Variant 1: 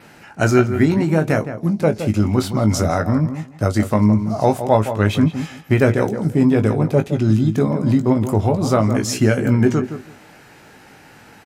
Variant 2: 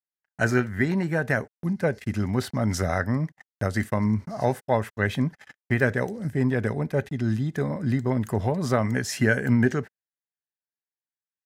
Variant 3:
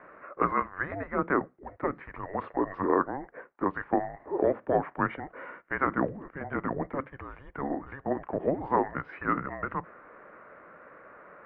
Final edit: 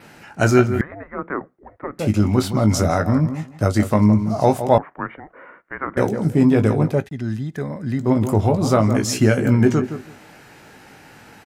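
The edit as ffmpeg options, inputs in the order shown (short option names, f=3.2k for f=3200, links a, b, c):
-filter_complex "[2:a]asplit=2[a][b];[0:a]asplit=4[c][d][e][f];[c]atrim=end=0.812[g];[a]atrim=start=0.808:end=1.992[h];[d]atrim=start=1.988:end=4.782[i];[b]atrim=start=4.778:end=5.972[j];[e]atrim=start=5.968:end=7.08[k];[1:a]atrim=start=6.84:end=8.16[l];[f]atrim=start=7.92[m];[g][h]acrossfade=d=0.004:c1=hsin:c2=hsin[n];[n][i]acrossfade=d=0.004:c1=hsin:c2=hsin[o];[o][j]acrossfade=d=0.004:c1=hsin:c2=hsin[p];[p][k]acrossfade=d=0.004:c1=hsin:c2=hsin[q];[q][l]acrossfade=d=0.24:c1=tri:c2=tri[r];[r][m]acrossfade=d=0.24:c1=tri:c2=tri"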